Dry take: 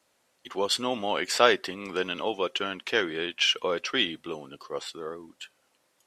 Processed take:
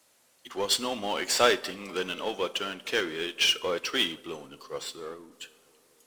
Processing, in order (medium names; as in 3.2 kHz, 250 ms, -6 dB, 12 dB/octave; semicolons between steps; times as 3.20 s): treble shelf 5 kHz +9 dB; power-law waveshaper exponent 0.7; on a send: bucket-brigade echo 233 ms, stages 2048, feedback 77%, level -20 dB; on the sum: Schroeder reverb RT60 0.65 s, combs from 29 ms, DRR 12.5 dB; upward expansion 1.5:1, over -36 dBFS; trim -5 dB